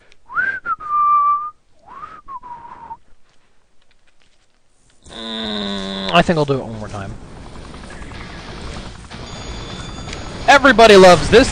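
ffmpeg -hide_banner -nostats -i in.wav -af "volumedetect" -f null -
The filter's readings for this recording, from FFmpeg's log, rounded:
mean_volume: -17.2 dB
max_volume: -2.3 dB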